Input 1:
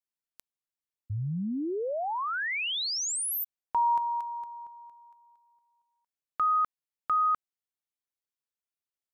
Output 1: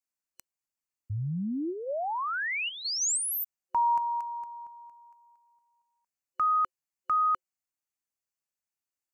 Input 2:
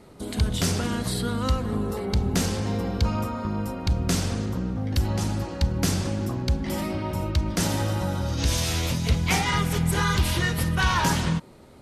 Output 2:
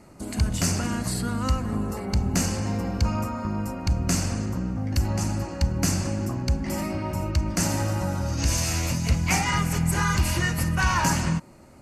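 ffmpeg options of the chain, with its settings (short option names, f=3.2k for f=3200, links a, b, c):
-af "superequalizer=7b=0.501:13b=0.316:15b=1.58"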